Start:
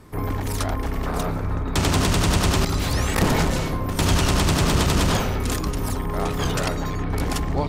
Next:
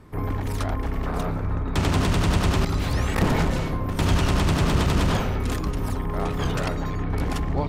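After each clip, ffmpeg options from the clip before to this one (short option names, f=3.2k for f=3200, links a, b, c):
-af "bass=f=250:g=2,treble=f=4k:g=-7,volume=-2.5dB"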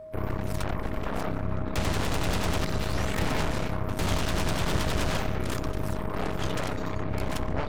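-af "aeval=exprs='0.299*(cos(1*acos(clip(val(0)/0.299,-1,1)))-cos(1*PI/2))+0.0422*(cos(6*acos(clip(val(0)/0.299,-1,1)))-cos(6*PI/2))+0.119*(cos(8*acos(clip(val(0)/0.299,-1,1)))-cos(8*PI/2))':c=same,aeval=exprs='val(0)+0.0251*sin(2*PI*630*n/s)':c=same,volume=-8.5dB"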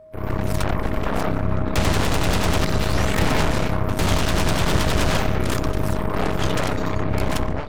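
-af "dynaudnorm=f=100:g=5:m=11dB,volume=-3dB"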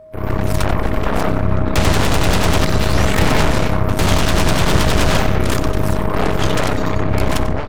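-af "aecho=1:1:94:0.168,volume=5dB"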